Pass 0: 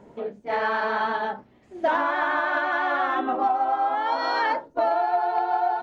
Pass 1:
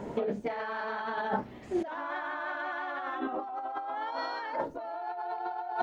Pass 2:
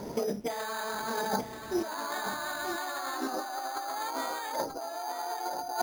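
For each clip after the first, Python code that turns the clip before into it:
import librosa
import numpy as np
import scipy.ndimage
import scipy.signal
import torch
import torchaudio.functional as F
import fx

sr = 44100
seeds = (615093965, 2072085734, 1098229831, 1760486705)

y1 = fx.over_compress(x, sr, threshold_db=-35.0, ratio=-1.0)
y2 = y1 + 10.0 ** (-8.5 / 20.0) * np.pad(y1, (int(933 * sr / 1000.0), 0))[:len(y1)]
y2 = np.repeat(y2[::8], 8)[:len(y2)]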